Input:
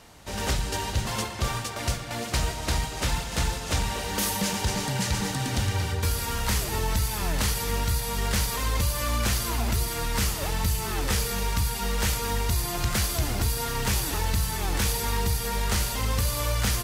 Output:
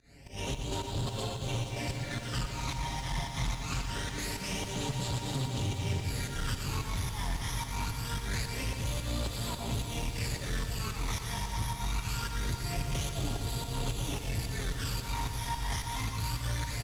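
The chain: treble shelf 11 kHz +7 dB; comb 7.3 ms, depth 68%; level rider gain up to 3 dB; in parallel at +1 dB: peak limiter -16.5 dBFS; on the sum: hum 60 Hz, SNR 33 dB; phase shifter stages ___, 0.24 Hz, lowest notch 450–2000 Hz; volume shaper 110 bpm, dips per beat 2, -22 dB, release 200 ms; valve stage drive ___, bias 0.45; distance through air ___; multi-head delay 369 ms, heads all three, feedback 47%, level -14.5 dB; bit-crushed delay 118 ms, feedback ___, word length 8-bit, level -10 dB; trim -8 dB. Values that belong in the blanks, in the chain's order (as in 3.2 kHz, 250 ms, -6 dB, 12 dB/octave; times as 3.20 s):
12, 21 dB, 56 m, 80%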